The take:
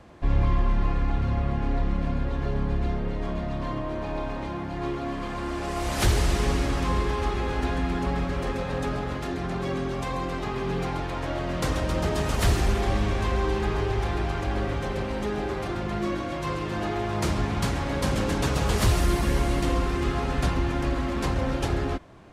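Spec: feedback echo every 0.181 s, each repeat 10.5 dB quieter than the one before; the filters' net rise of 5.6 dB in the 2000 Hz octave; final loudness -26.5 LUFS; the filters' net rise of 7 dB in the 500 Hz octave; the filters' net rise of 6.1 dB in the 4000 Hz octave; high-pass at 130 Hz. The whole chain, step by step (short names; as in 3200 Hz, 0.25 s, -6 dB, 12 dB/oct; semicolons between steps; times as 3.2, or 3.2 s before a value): HPF 130 Hz; bell 500 Hz +9 dB; bell 2000 Hz +5 dB; bell 4000 Hz +6 dB; feedback echo 0.181 s, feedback 30%, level -10.5 dB; gain -2 dB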